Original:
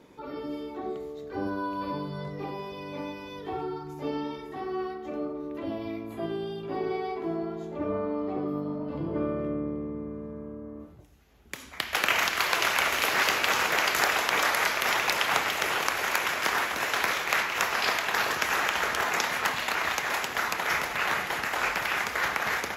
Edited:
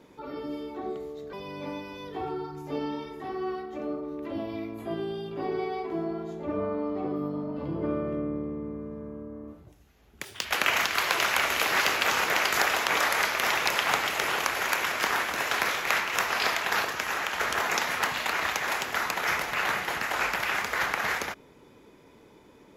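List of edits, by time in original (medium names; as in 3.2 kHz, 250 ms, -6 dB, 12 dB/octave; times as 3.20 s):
1.33–2.65 s: delete
11.57–11.87 s: speed 152%
18.27–18.82 s: gain -3.5 dB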